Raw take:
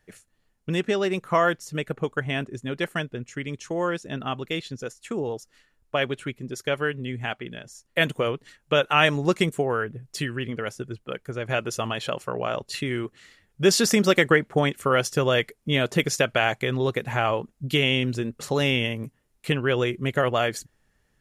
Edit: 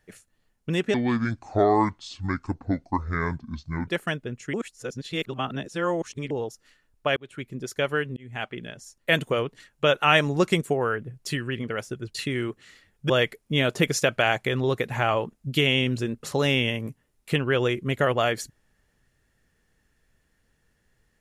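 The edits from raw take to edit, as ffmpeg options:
-filter_complex "[0:a]asplit=9[a][b][c][d][e][f][g][h][i];[a]atrim=end=0.944[j];[b]atrim=start=0.94:end=2.76,asetpts=PTS-STARTPTS,asetrate=27342,aresample=44100[k];[c]atrim=start=2.756:end=3.422[l];[d]atrim=start=3.418:end=5.192,asetpts=PTS-STARTPTS,areverse[m];[e]atrim=start=5.188:end=6.05,asetpts=PTS-STARTPTS,afade=t=out:st=0.858:d=0.004:c=hsin[n];[f]atrim=start=6.05:end=7.05,asetpts=PTS-STARTPTS,afade=t=in:d=0.37,afade=t=out:st=0.996:d=0.004:c=hsin[o];[g]atrim=start=7.05:end=11.032,asetpts=PTS-STARTPTS,afade=t=in:d=0.31[p];[h]atrim=start=12.698:end=13.652[q];[i]atrim=start=15.258[r];[j][k]acrossfade=d=0.004:c1=hsin:c2=hsin[s];[s][l]acrossfade=d=0.004:c1=hsin:c2=hsin[t];[t][m]acrossfade=d=0.004:c1=hsin:c2=hsin[u];[n][o][p]concat=n=3:v=0:a=1[v];[u][v]acrossfade=d=0.004:c1=hsin:c2=hsin[w];[w][q]acrossfade=d=0.004:c1=hsin:c2=hsin[x];[x][r]acrossfade=d=0.004:c1=hsin:c2=hsin"

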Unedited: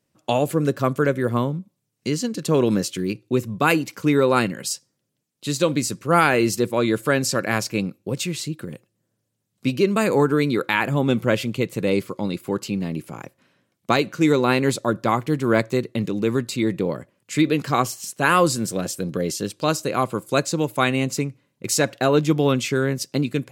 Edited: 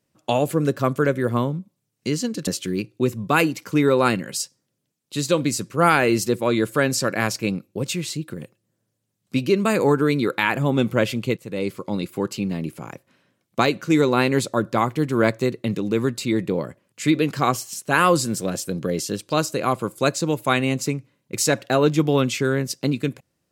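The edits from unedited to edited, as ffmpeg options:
-filter_complex "[0:a]asplit=3[a][b][c];[a]atrim=end=2.472[d];[b]atrim=start=2.778:end=11.68,asetpts=PTS-STARTPTS,afade=t=out:st=8.898:d=0.004:c=hsin:silence=0.237137[e];[c]atrim=start=11.68,asetpts=PTS-STARTPTS,afade=t=in:d=0.57:silence=0.237137[f];[e][f]concat=n=2:v=0:a=1[g];[d][g]acrossfade=d=0.004:c1=hsin:c2=hsin"

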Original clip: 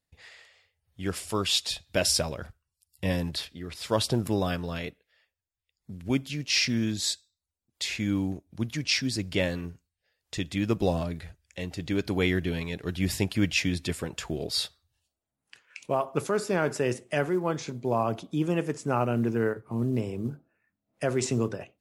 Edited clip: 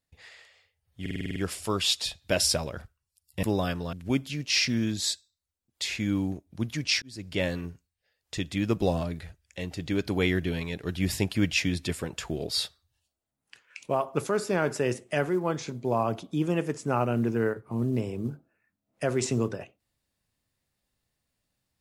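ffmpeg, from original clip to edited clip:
-filter_complex "[0:a]asplit=11[a][b][c][d][e][f][g][h][i][j][k];[a]atrim=end=1.062[l];[b]atrim=start=1.008:end=1.062[m];[c]atrim=start=1.008:end=1.062[n];[d]atrim=start=1.008:end=1.062[o];[e]atrim=start=1.008:end=1.062[p];[f]atrim=start=1.008:end=1.062[q];[g]atrim=start=1.008:end=1.062[r];[h]atrim=start=1.008:end=3.082[s];[i]atrim=start=4.258:end=4.762[t];[j]atrim=start=5.928:end=9.02,asetpts=PTS-STARTPTS,afade=t=out:st=3.088:d=0.004:c=hsin[u];[k]atrim=start=9.02,asetpts=PTS-STARTPTS,afade=t=in:d=0.46[v];[l][m]acrossfade=d=0.004:c1=hsin:c2=hsin[w];[w][n]acrossfade=d=0.004:c1=hsin:c2=hsin[x];[x][o]acrossfade=d=0.004:c1=hsin:c2=hsin[y];[y][p]acrossfade=d=0.004:c1=hsin:c2=hsin[z];[z][q]acrossfade=d=0.004:c1=hsin:c2=hsin[aa];[aa][r]acrossfade=d=0.004:c1=hsin:c2=hsin[ab];[ab][s]acrossfade=d=0.004:c1=hsin:c2=hsin[ac];[ac][t]acrossfade=d=0.004:c1=hsin:c2=hsin[ad];[u][v]concat=n=2:v=0:a=1[ae];[ad][ae]acrossfade=d=0.004:c1=hsin:c2=hsin"

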